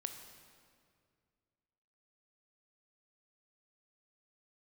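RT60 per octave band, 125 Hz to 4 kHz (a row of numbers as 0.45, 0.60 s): 2.7, 2.4, 2.3, 2.0, 1.8, 1.6 s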